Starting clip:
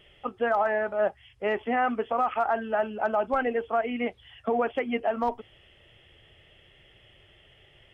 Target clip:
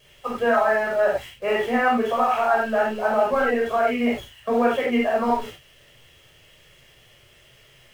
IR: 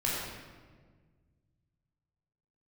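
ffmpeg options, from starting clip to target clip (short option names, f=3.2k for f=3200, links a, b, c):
-filter_complex "[0:a]aeval=exprs='val(0)+0.5*0.00891*sgn(val(0))':c=same,lowshelf=f=250:g=-4.5,agate=range=-14dB:threshold=-42dB:ratio=16:detection=peak[a];[1:a]atrim=start_sample=2205,afade=t=out:st=0.15:d=0.01,atrim=end_sample=7056[b];[a][b]afir=irnorm=-1:irlink=0"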